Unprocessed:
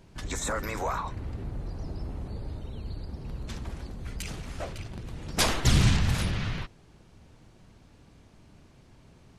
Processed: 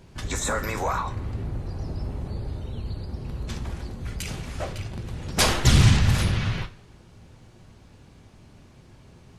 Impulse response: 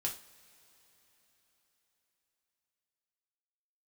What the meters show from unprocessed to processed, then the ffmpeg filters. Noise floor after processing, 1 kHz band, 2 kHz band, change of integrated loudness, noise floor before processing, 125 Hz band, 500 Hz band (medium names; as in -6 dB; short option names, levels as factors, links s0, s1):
-52 dBFS, +4.5 dB, +4.5 dB, +5.0 dB, -56 dBFS, +6.0 dB, +4.0 dB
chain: -filter_complex "[0:a]asplit=2[s0][s1];[1:a]atrim=start_sample=2205,afade=t=out:st=0.42:d=0.01,atrim=end_sample=18963[s2];[s1][s2]afir=irnorm=-1:irlink=0,volume=0.708[s3];[s0][s3]amix=inputs=2:normalize=0"